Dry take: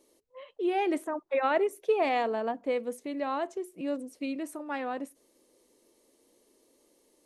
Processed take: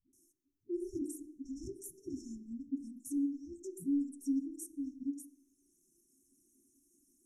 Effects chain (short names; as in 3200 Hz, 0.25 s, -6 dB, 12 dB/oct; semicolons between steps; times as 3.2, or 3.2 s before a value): notches 50/100/150/200/250/300/350 Hz; dispersion highs, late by 0.13 s, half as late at 340 Hz; reverb removal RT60 1.5 s; soft clip -27 dBFS, distortion -11 dB; brick-wall FIR band-stop 390–5300 Hz; reverb RT60 1.1 s, pre-delay 3 ms, DRR 8 dB; 1.85–2.28 mismatched tape noise reduction encoder only; gain +1 dB